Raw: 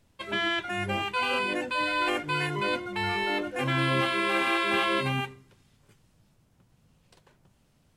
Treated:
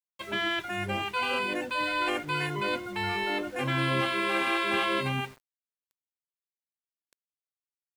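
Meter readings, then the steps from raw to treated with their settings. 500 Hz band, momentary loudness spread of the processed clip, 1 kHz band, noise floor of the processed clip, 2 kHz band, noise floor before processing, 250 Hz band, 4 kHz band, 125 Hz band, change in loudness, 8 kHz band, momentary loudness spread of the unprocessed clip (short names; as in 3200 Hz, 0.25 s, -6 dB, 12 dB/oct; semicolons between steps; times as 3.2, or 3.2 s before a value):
-1.5 dB, 5 LU, -1.5 dB, under -85 dBFS, -1.5 dB, -66 dBFS, -1.5 dB, -1.5 dB, -1.5 dB, -1.5 dB, -1.0 dB, 5 LU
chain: sample gate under -45.5 dBFS; gain -1.5 dB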